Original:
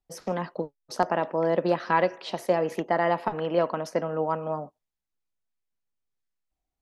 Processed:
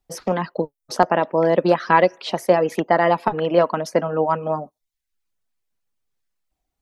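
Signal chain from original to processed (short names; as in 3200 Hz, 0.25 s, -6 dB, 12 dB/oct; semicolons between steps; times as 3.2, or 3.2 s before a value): reverb removal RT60 0.52 s; gain +8 dB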